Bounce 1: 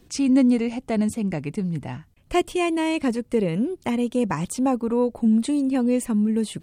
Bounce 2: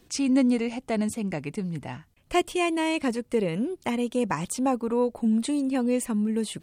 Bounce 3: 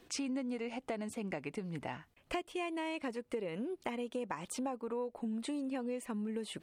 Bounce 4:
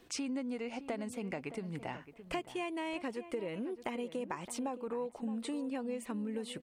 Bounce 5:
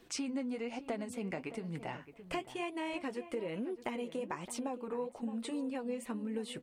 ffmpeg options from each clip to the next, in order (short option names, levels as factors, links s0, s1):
-af "lowshelf=f=350:g=-6.5"
-af "bass=f=250:g=-10,treble=f=4000:g=-8,acompressor=threshold=0.0141:ratio=6,volume=1.12"
-filter_complex "[0:a]asplit=2[s0][s1];[s1]adelay=617,lowpass=f=1800:p=1,volume=0.237,asplit=2[s2][s3];[s3]adelay=617,lowpass=f=1800:p=1,volume=0.16[s4];[s0][s2][s4]amix=inputs=3:normalize=0"
-af "flanger=delay=4.4:depth=7.7:regen=-53:speed=1.1:shape=triangular,volume=1.58"